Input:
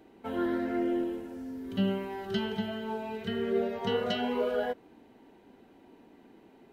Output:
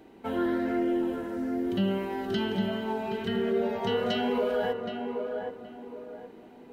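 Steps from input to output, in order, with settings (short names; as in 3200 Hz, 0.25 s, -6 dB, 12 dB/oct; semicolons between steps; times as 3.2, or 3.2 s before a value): tape echo 0.772 s, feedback 37%, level -6 dB, low-pass 1400 Hz; in parallel at +2.5 dB: limiter -25.5 dBFS, peak gain reduction 8 dB; on the sum: gain -3.5 dB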